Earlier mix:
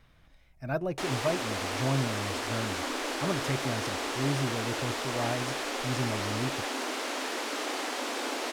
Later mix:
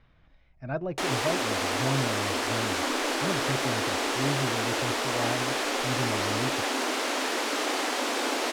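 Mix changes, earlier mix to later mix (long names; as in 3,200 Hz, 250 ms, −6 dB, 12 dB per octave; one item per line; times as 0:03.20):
speech: add high-frequency loss of the air 180 metres
background +5.0 dB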